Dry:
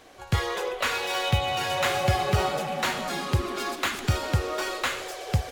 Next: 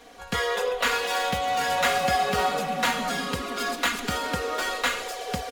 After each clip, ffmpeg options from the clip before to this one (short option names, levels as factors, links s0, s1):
-filter_complex "[0:a]aecho=1:1:4.2:0.86,acrossover=split=200[s0][s1];[s0]acompressor=threshold=0.0141:ratio=6[s2];[s2][s1]amix=inputs=2:normalize=0"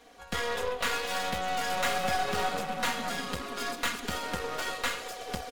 -af "aeval=exprs='0.335*(cos(1*acos(clip(val(0)/0.335,-1,1)))-cos(1*PI/2))+0.0376*(cos(8*acos(clip(val(0)/0.335,-1,1)))-cos(8*PI/2))':c=same,volume=0.473"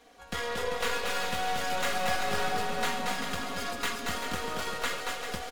-af "aecho=1:1:230|391|503.7|582.6|637.8:0.631|0.398|0.251|0.158|0.1,volume=0.794"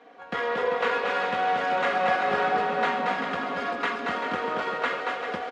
-af "highpass=240,lowpass=2000,volume=2.37"